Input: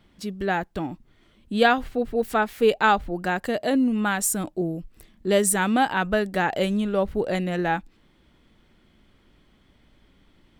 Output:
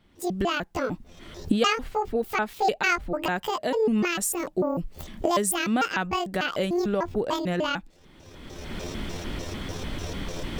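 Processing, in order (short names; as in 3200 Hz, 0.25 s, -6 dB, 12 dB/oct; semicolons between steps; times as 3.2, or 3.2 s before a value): trilling pitch shifter +9.5 st, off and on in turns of 0.149 s; recorder AGC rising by 28 dB/s; gain -4 dB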